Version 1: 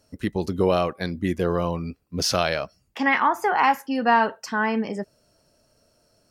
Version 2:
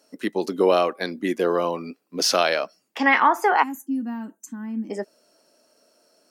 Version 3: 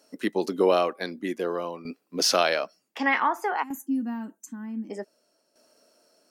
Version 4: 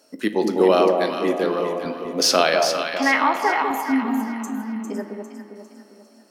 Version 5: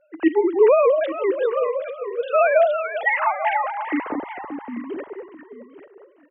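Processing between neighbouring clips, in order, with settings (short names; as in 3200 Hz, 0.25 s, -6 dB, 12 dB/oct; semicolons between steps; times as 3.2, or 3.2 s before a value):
de-esser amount 35%; HPF 250 Hz 24 dB/oct; spectral gain 3.63–4.9, 360–6000 Hz -26 dB; gain +3 dB
tremolo saw down 0.54 Hz, depth 70%
resonator 53 Hz, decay 0.4 s, harmonics all, mix 50%; echo with dull and thin repeats by turns 0.201 s, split 940 Hz, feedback 65%, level -3 dB; spring tank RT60 2.8 s, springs 48 ms, chirp 75 ms, DRR 10 dB; gain +8 dB
sine-wave speech; echo 0.842 s -14.5 dB; record warp 78 rpm, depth 100 cents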